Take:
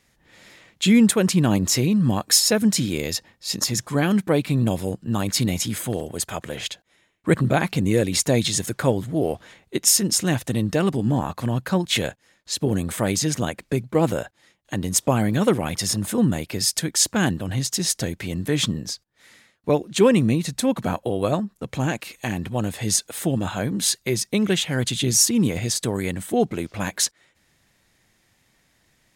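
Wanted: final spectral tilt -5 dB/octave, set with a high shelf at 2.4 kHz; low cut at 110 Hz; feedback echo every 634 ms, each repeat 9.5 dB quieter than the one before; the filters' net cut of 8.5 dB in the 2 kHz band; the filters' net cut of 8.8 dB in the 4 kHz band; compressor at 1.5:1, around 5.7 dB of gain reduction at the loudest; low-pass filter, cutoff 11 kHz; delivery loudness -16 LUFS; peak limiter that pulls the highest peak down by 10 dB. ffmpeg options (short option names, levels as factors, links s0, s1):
-af "highpass=110,lowpass=11000,equalizer=f=2000:t=o:g=-7.5,highshelf=f=2400:g=-5.5,equalizer=f=4000:t=o:g=-4.5,acompressor=threshold=0.0398:ratio=1.5,alimiter=limit=0.1:level=0:latency=1,aecho=1:1:634|1268|1902|2536:0.335|0.111|0.0365|0.012,volume=5.31"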